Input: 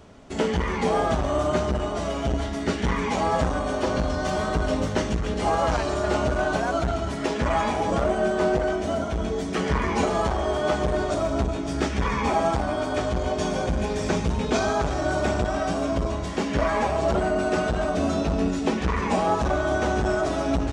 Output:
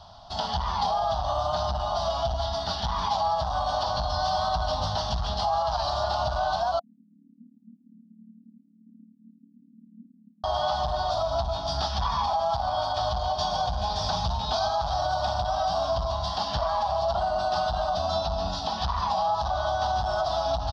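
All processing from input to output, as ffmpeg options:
-filter_complex "[0:a]asettb=1/sr,asplit=3[s0][s1][s2];[s0]atrim=end=6.794[s3];[s1]atrim=start=6.79:end=10.44,asetpts=PTS-STARTPTS,afade=t=in:d=0.004:c=qsin,afade=t=out:st=3.646:d=0.004:c=qsin,asuperpass=centerf=240:order=8:qfactor=4.1,tremolo=f=37:d=0.667[s4];[s2]atrim=start=10.436[s5];[s3][s4]acrossfade=d=0.004:c1=hsin:c2=qsin[s6];[s6][s5]acrossfade=d=0.004:c1=qsin:c2=hsin,firequalizer=gain_entry='entry(110,0);entry(280,-20);entry(440,-22);entry(700,9);entry(1000,5);entry(2200,-22);entry(3300,1);entry(4900,4);entry(7200,-26)':delay=0.05:min_phase=1,alimiter=limit=0.112:level=0:latency=1:release=124,highshelf=f=2600:g=11.5"

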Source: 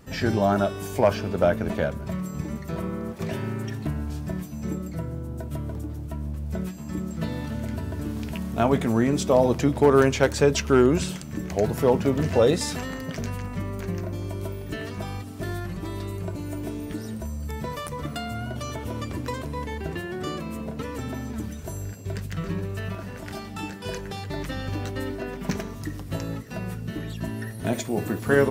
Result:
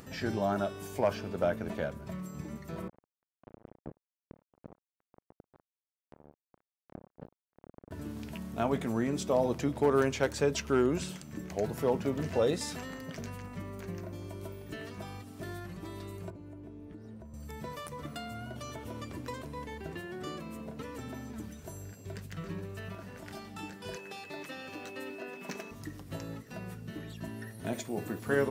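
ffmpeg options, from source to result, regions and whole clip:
-filter_complex "[0:a]asettb=1/sr,asplit=3[s0][s1][s2];[s0]atrim=end=2.884[s3];[s1]atrim=start=2.88:end=7.91,asetpts=PTS-STARTPTS,afade=t=in:d=0.004:c=qsin,afade=t=out:st=5.026:d=0.004:c=qsin,bandpass=f=140:t=q:w=0.85,tremolo=f=1.2:d=0.48,acrusher=bits=3:mix=0:aa=0.5[s4];[s2]atrim=start=7.906[s5];[s3][s4]acrossfade=d=0.004:c1=hsin:c2=qsin[s6];[s6][s5]acrossfade=d=0.004:c1=qsin:c2=hsin,asettb=1/sr,asplit=3[s7][s8][s9];[s7]atrim=end=16.304[s10];[s8]atrim=start=16.3:end=17.34,asetpts=PTS-STARTPTS,afade=t=in:d=0.004:c=qsin,afade=t=out:st=1.036:d=0.004:c=qsin,lowpass=f=1500:p=1,equalizer=f=250:w=0.48:g=5,acrossover=split=98|350[s11][s12][s13];[s11]acompressor=threshold=0.0112:ratio=4[s14];[s12]acompressor=threshold=0.00631:ratio=4[s15];[s13]acompressor=threshold=0.00501:ratio=4[s16];[s14][s15][s16]amix=inputs=3:normalize=0[s17];[s9]atrim=start=17.336[s18];[s10][s17]acrossfade=d=0.004:c1=hsin:c2=qsin[s19];[s19][s18]acrossfade=d=0.004:c1=qsin:c2=hsin,asettb=1/sr,asplit=3[s20][s21][s22];[s20]atrim=end=23.964[s23];[s21]atrim=start=23.96:end=25.71,asetpts=PTS-STARTPTS,afade=t=in:d=0.004:c=qsin,afade=t=out:st=1.746:d=0.004:c=qsin,highpass=270,aeval=exprs='val(0)+0.00891*sin(2*PI*2600*n/s)':c=same[s24];[s22]atrim=start=25.706[s25];[s23][s24]acrossfade=d=0.004:c1=hsin:c2=qsin[s26];[s26][s25]acrossfade=d=0.004:c1=qsin:c2=hsin,acompressor=mode=upward:threshold=0.0224:ratio=2.5,lowshelf=f=66:g=-11,volume=0.376"

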